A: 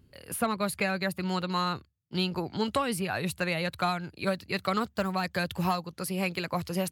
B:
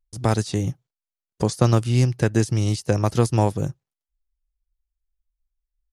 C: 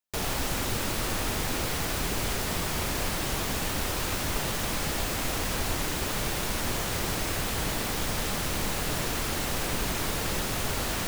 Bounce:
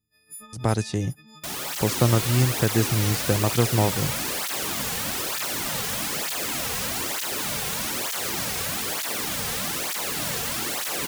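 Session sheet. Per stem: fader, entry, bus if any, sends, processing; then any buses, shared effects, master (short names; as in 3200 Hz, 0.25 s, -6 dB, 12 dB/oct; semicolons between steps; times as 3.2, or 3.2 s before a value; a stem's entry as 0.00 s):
-19.5 dB, 0.00 s, no send, frequency quantiser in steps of 6 st; bell 650 Hz -14 dB 0.76 oct
-2.5 dB, 0.40 s, no send, dry
-0.5 dB, 1.30 s, no send, tilt +1.5 dB/oct; AGC gain up to 4 dB; tape flanging out of phase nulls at 1.1 Hz, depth 3.5 ms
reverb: off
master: dry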